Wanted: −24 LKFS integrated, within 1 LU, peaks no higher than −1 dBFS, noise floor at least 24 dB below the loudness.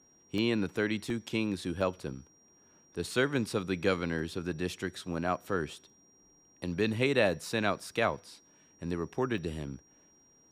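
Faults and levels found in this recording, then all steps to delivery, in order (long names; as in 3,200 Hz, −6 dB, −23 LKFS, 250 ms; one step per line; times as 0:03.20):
number of dropouts 7; longest dropout 1.7 ms; interfering tone 5,700 Hz; level of the tone −62 dBFS; integrated loudness −32.5 LKFS; sample peak −12.5 dBFS; target loudness −24.0 LKFS
→ repair the gap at 0:00.38/0:01.10/0:01.81/0:04.19/0:07.43/0:08.14/0:09.38, 1.7 ms
notch filter 5,700 Hz, Q 30
level +8.5 dB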